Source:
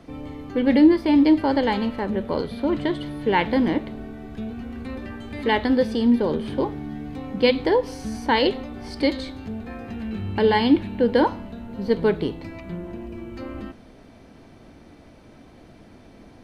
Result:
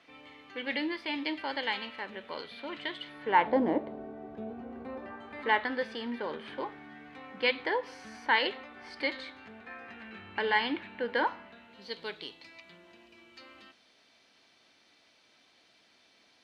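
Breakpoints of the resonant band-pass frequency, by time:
resonant band-pass, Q 1.3
0:03.05 2,600 Hz
0:03.59 620 Hz
0:04.76 620 Hz
0:05.78 1,800 Hz
0:11.47 1,800 Hz
0:11.91 4,000 Hz

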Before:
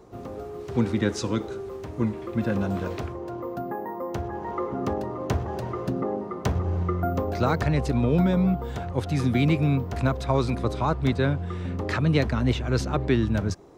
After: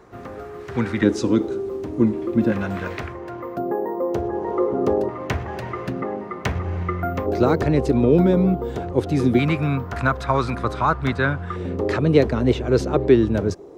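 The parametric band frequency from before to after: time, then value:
parametric band +12 dB 1.2 octaves
1,700 Hz
from 0:01.03 300 Hz
from 0:02.52 1,900 Hz
from 0:03.57 430 Hz
from 0:05.09 2,100 Hz
from 0:07.26 370 Hz
from 0:09.39 1,400 Hz
from 0:11.56 420 Hz

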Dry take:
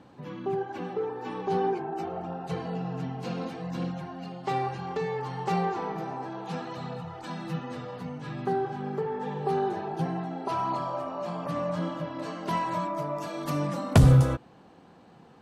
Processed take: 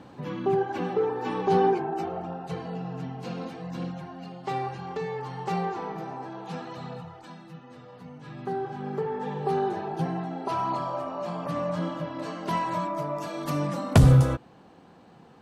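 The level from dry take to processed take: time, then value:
0:01.63 +5.5 dB
0:02.56 −1.5 dB
0:06.98 −1.5 dB
0:07.53 −12 dB
0:09.00 +1 dB

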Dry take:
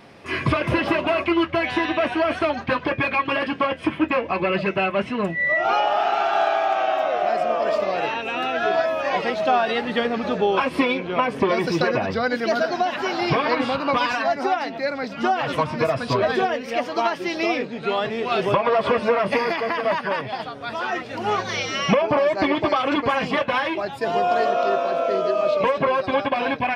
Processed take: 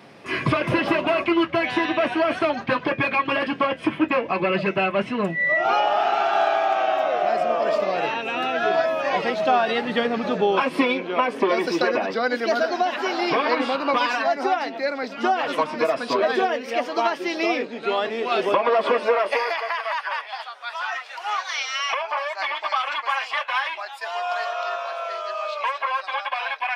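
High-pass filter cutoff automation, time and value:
high-pass filter 24 dB per octave
0:10.23 110 Hz
0:11.19 240 Hz
0:18.86 240 Hz
0:19.85 840 Hz

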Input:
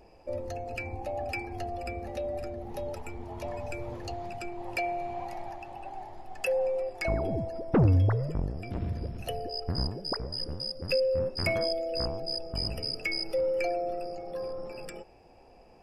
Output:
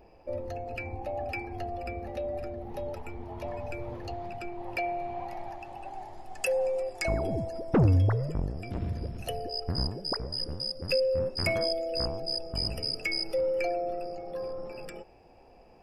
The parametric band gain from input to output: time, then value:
parametric band 7,900 Hz 1.2 octaves
0:05.23 −10 dB
0:05.67 +1 dB
0:06.61 +10 dB
0:07.75 +10 dB
0:08.22 +3.5 dB
0:13.18 +3.5 dB
0:13.74 −4.5 dB

